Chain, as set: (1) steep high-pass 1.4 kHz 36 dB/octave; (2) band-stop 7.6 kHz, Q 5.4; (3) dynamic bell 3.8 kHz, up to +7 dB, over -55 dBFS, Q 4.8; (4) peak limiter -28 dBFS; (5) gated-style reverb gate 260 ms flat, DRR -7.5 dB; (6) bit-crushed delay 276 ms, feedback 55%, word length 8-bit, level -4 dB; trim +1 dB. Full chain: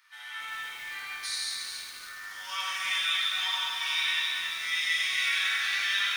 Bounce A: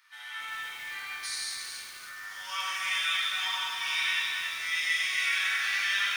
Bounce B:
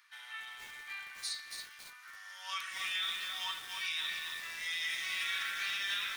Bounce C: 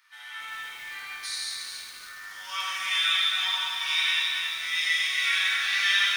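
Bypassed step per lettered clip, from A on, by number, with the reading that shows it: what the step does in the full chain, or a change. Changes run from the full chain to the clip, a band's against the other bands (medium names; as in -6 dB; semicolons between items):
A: 3, 4 kHz band -3.0 dB; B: 5, loudness change -8.5 LU; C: 4, crest factor change +1.5 dB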